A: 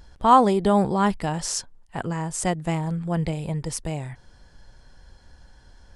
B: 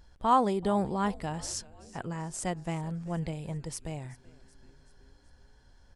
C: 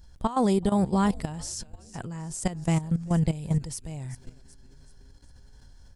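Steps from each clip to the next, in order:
frequency-shifting echo 380 ms, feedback 57%, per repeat -140 Hz, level -21 dB; trim -8.5 dB
peak limiter -22.5 dBFS, peak gain reduction 10 dB; tone controls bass +8 dB, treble +9 dB; level held to a coarse grid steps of 14 dB; trim +6.5 dB

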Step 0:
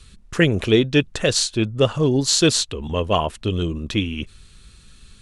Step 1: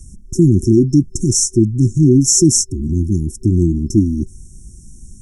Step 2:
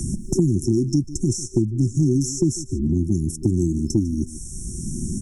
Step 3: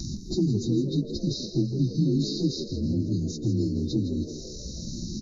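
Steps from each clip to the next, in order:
FFT band-reject 380–5300 Hz; loudness maximiser +11 dB; trim -1 dB
delay 146 ms -19 dB; three bands compressed up and down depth 100%; trim -7.5 dB
frequency axis rescaled in octaves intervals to 88%; frequency-shifting echo 163 ms, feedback 51%, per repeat +65 Hz, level -11.5 dB; trim -4 dB

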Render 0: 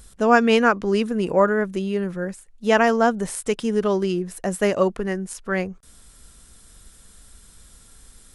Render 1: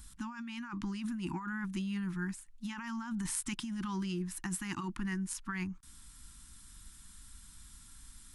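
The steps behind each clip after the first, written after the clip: elliptic band-stop 330–880 Hz, stop band 40 dB; peaking EQ 460 Hz -13.5 dB 0.34 oct; compressor with a negative ratio -29 dBFS, ratio -1; trim -8.5 dB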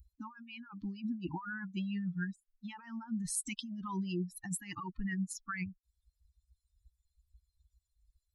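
expander on every frequency bin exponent 3; trim +4.5 dB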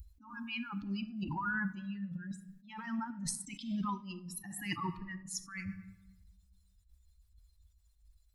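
compressor with a negative ratio -41 dBFS, ratio -0.5; simulated room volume 430 m³, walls mixed, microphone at 0.32 m; attacks held to a fixed rise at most 110 dB/s; trim +5.5 dB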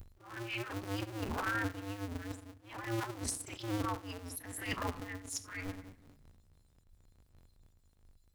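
cycle switcher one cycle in 2, inverted; pre-echo 35 ms -12 dB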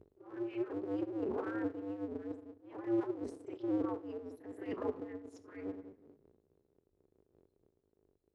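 band-pass filter 400 Hz, Q 4; trim +11 dB

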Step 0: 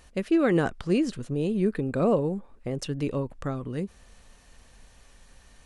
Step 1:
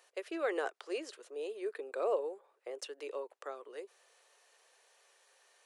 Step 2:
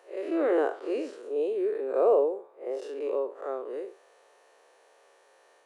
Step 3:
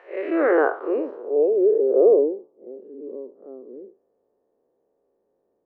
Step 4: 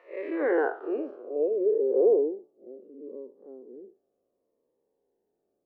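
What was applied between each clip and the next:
steep high-pass 390 Hz 48 dB/octave; trim -7.5 dB
spectral blur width 121 ms; tilt shelf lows +9 dB, about 1.4 kHz; trim +8 dB
low-pass sweep 2.1 kHz -> 210 Hz, 0.27–2.67 s; trim +5.5 dB
Shepard-style phaser falling 0.67 Hz; trim -5 dB

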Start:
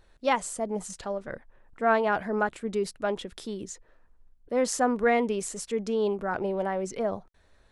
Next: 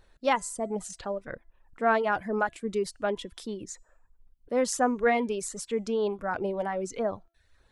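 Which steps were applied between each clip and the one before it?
de-hum 337.1 Hz, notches 26; reverb removal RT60 0.63 s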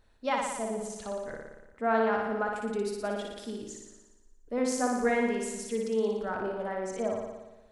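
flutter echo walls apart 10 m, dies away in 1.1 s; on a send at -14 dB: reverberation RT60 0.15 s, pre-delay 3 ms; on the sum: trim -5.5 dB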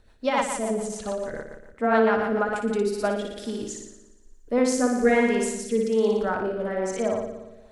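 rotary cabinet horn 7 Hz, later 1.2 Hz, at 2.32 s; trim +9 dB

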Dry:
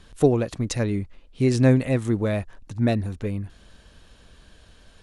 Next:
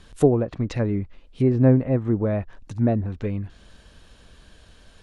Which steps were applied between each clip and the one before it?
low-pass that closes with the level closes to 1.1 kHz, closed at -19 dBFS; trim +1 dB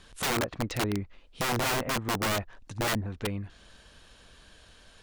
bass shelf 450 Hz -7.5 dB; integer overflow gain 23 dB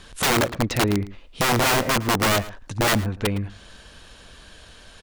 echo from a far wall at 19 m, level -17 dB; trim +8.5 dB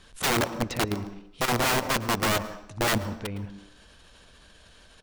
level held to a coarse grid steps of 10 dB; on a send at -14 dB: reverberation RT60 0.65 s, pre-delay 127 ms; on the sum: trim -3.5 dB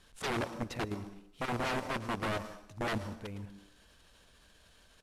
CVSD coder 64 kbps; trim -8.5 dB

